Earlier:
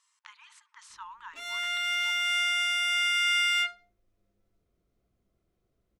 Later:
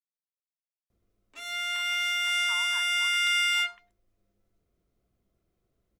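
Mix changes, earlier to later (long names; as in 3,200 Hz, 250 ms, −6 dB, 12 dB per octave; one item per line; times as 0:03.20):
speech: entry +1.50 s
master: add high-shelf EQ 9,300 Hz +6 dB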